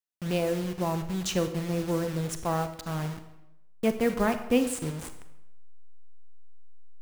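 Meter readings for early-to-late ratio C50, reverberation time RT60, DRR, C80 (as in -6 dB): 10.0 dB, 0.90 s, 8.5 dB, 12.5 dB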